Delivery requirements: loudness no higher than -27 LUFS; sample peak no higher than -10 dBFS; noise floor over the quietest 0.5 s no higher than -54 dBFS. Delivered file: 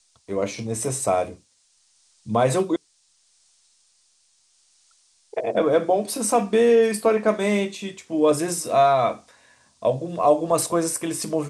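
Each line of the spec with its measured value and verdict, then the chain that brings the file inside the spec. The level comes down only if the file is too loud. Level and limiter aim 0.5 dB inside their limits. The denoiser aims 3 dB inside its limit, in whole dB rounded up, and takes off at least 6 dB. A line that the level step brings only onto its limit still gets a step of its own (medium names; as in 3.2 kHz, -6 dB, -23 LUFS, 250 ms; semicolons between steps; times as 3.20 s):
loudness -22.0 LUFS: fail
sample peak -6.5 dBFS: fail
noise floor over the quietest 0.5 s -63 dBFS: pass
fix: trim -5.5 dB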